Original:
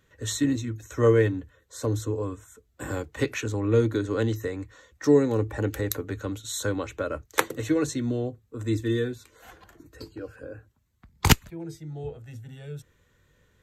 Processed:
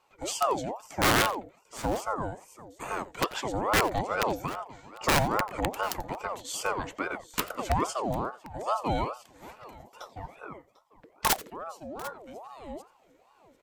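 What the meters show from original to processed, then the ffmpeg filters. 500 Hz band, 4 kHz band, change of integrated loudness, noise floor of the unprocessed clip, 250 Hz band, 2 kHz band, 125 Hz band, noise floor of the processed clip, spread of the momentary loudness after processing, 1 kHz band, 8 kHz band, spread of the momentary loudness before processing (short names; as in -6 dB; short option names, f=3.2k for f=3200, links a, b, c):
-6.0 dB, +1.0 dB, -3.0 dB, -67 dBFS, -8.5 dB, +2.0 dB, -9.5 dB, -63 dBFS, 20 LU, +8.0 dB, -1.0 dB, 20 LU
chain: -af "aeval=exprs='(mod(5.01*val(0)+1,2)-1)/5.01':c=same,aecho=1:1:87|746:0.112|0.106,aeval=exprs='val(0)*sin(2*PI*690*n/s+690*0.45/2.4*sin(2*PI*2.4*n/s))':c=same"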